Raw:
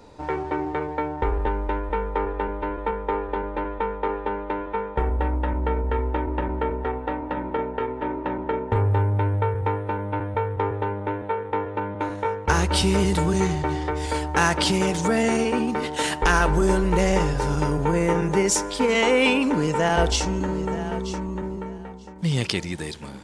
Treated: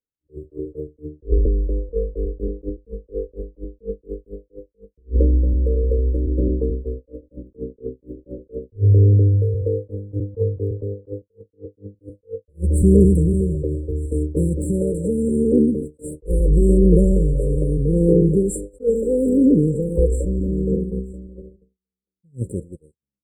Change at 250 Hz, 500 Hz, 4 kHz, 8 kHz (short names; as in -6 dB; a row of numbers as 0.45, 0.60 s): +5.0 dB, +2.0 dB, under -40 dB, -8.5 dB